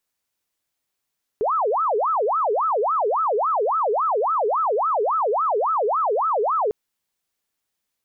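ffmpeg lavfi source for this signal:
ffmpeg -f lavfi -i "aevalsrc='0.126*sin(2*PI*(864*t-456/(2*PI*3.6)*sin(2*PI*3.6*t)))':duration=5.3:sample_rate=44100" out.wav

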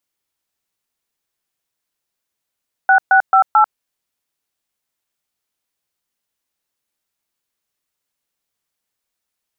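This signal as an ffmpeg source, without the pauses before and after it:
ffmpeg -f lavfi -i "aevalsrc='0.316*clip(min(mod(t,0.22),0.093-mod(t,0.22))/0.002,0,1)*(eq(floor(t/0.22),0)*(sin(2*PI*770*mod(t,0.22))+sin(2*PI*1477*mod(t,0.22)))+eq(floor(t/0.22),1)*(sin(2*PI*770*mod(t,0.22))+sin(2*PI*1477*mod(t,0.22)))+eq(floor(t/0.22),2)*(sin(2*PI*770*mod(t,0.22))+sin(2*PI*1336*mod(t,0.22)))+eq(floor(t/0.22),3)*(sin(2*PI*852*mod(t,0.22))+sin(2*PI*1336*mod(t,0.22))))':duration=0.88:sample_rate=44100" out.wav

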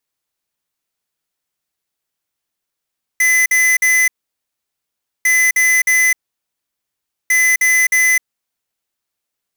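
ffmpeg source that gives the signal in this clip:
ffmpeg -f lavfi -i "aevalsrc='0.237*(2*lt(mod(2020*t,1),0.5)-1)*clip(min(mod(mod(t,2.05),0.31),0.26-mod(mod(t,2.05),0.31))/0.005,0,1)*lt(mod(t,2.05),0.93)':duration=6.15:sample_rate=44100" out.wav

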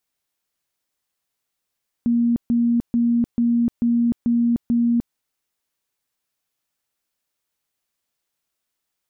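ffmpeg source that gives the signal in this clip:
ffmpeg -f lavfi -i "aevalsrc='0.178*sin(2*PI*236*mod(t,0.44))*lt(mod(t,0.44),71/236)':duration=3.08:sample_rate=44100" out.wav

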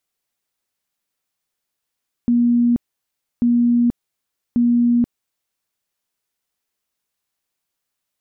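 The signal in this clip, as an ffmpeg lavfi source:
ffmpeg -f lavfi -i "aevalsrc='0.251*sin(2*PI*239*mod(t,1.14))*lt(mod(t,1.14),115/239)':duration=3.42:sample_rate=44100" out.wav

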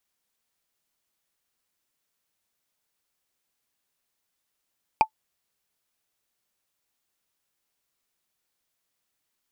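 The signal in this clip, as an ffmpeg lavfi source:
ffmpeg -f lavfi -i "aevalsrc='0.376*pow(10,-3*t/0.08)*sin(2*PI*874*t)+0.141*pow(10,-3*t/0.024)*sin(2*PI*2409.6*t)+0.0531*pow(10,-3*t/0.011)*sin(2*PI*4723.1*t)+0.02*pow(10,-3*t/0.006)*sin(2*PI*7807.4*t)+0.0075*pow(10,-3*t/0.004)*sin(2*PI*11659.2*t)':duration=0.45:sample_rate=44100" out.wav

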